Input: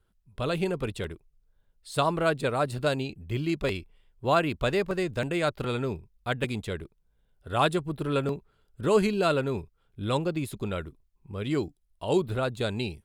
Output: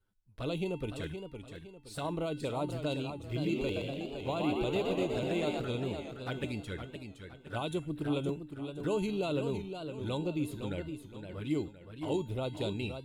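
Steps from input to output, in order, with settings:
brickwall limiter −18 dBFS, peak gain reduction 7 dB
flanger swept by the level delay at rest 10.2 ms, full sweep at −26 dBFS
tuned comb filter 300 Hz, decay 0.41 s, harmonics odd, mix 80%
0:03.23–0:05.60: echo with shifted repeats 122 ms, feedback 54%, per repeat +71 Hz, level −3.5 dB
feedback echo with a swinging delay time 515 ms, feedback 37%, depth 111 cents, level −8 dB
level +8 dB

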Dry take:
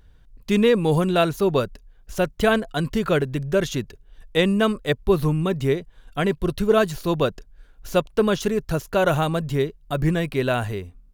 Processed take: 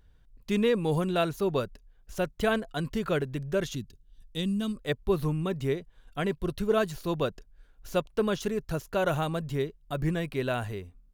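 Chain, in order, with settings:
0:03.75–0:04.77: flat-topped bell 990 Hz −13.5 dB 3 octaves
level −7.5 dB

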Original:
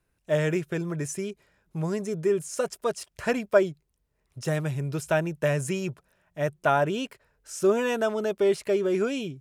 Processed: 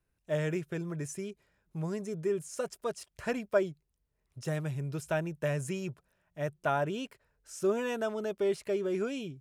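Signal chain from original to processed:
low-shelf EQ 170 Hz +3.5 dB
level −7.5 dB

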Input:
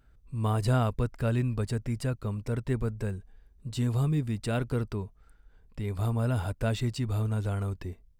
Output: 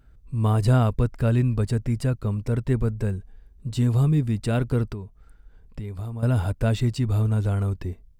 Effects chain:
low-shelf EQ 430 Hz +5 dB
0:04.92–0:06.23: downward compressor 5 to 1, threshold −33 dBFS, peak gain reduction 11.5 dB
level +2.5 dB

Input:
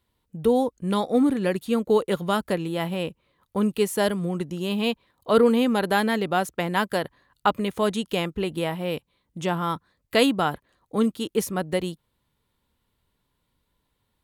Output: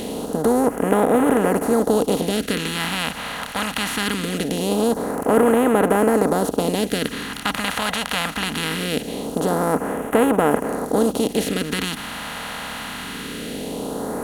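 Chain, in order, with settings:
compressor on every frequency bin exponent 0.2
all-pass phaser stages 2, 0.22 Hz, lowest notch 360–4,200 Hz
level −3.5 dB

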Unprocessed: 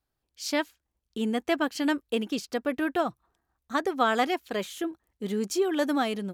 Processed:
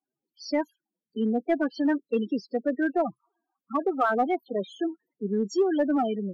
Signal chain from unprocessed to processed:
high-pass filter 160 Hz 24 dB per octave
spectral peaks only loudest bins 8
in parallel at −8 dB: hard clipping −22.5 dBFS, distortion −15 dB

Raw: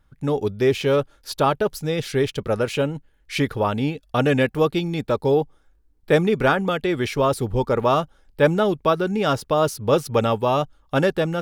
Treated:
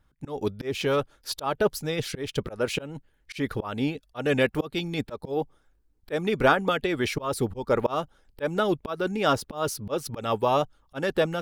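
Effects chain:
volume swells 200 ms
harmonic and percussive parts rebalanced harmonic −7 dB

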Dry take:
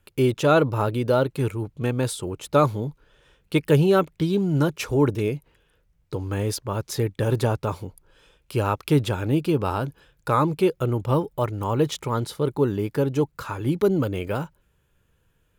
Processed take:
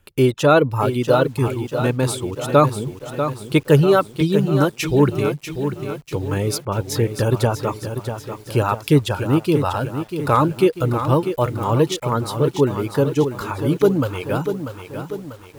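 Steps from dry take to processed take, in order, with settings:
reverb reduction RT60 0.93 s
feedback echo at a low word length 642 ms, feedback 55%, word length 8 bits, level −8.5 dB
level +5 dB

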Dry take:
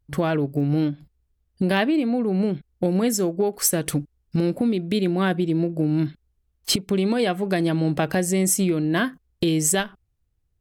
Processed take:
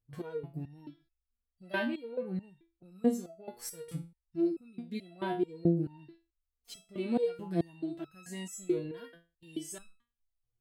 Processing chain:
harmonic and percussive parts rebalanced percussive −13 dB
step-sequenced resonator 4.6 Hz 120–1,300 Hz
level +2 dB

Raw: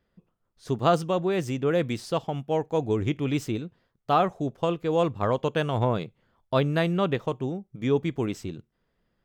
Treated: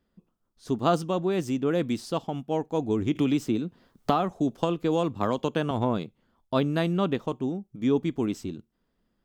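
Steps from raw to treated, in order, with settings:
octave-band graphic EQ 125/250/500/2,000 Hz −6/+6/−4/−5 dB
0:03.15–0:05.71: multiband upward and downward compressor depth 100%

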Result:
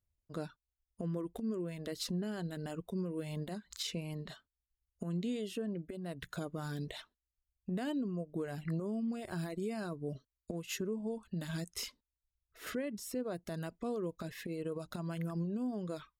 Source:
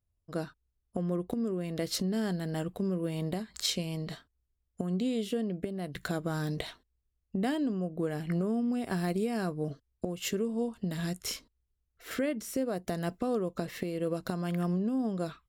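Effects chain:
brickwall limiter −24.5 dBFS, peak gain reduction 8.5 dB
reverb reduction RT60 0.82 s
change of speed 0.956×
level −3.5 dB

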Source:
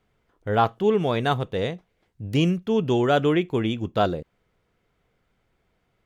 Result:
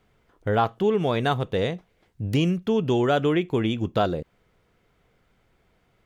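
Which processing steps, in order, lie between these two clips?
downward compressor 2 to 1, threshold −28 dBFS, peak gain reduction 7.5 dB
level +5 dB

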